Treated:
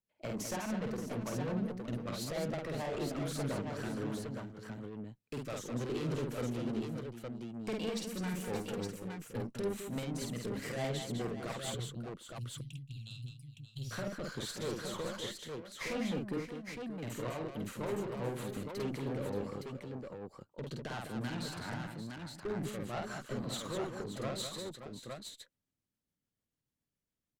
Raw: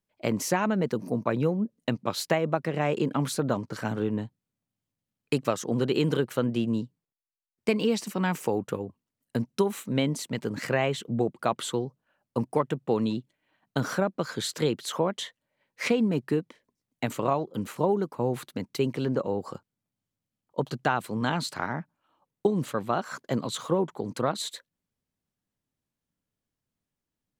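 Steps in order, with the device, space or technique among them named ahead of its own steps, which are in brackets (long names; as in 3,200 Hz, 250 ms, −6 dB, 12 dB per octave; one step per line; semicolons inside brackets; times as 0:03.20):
0:11.74–0:13.91: Chebyshev band-stop filter 140–2,600 Hz, order 5
overdriven rotary cabinet (tube saturation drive 29 dB, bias 0.4; rotating-speaker cabinet horn 7 Hz)
multi-tap delay 50/203/577/619/864 ms −3/−6.5/−11/−19.5/−4.5 dB
level −4.5 dB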